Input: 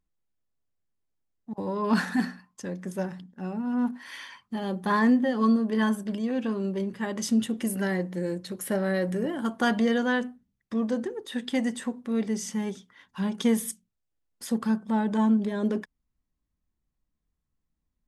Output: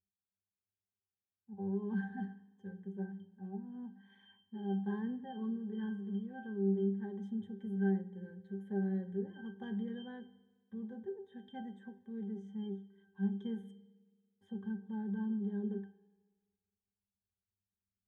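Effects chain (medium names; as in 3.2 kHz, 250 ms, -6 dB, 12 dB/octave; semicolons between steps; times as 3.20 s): peaking EQ 4.8 kHz -12.5 dB 0.42 oct; pitch-class resonator G, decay 0.29 s; reverberation RT60 1.5 s, pre-delay 11 ms, DRR 15.5 dB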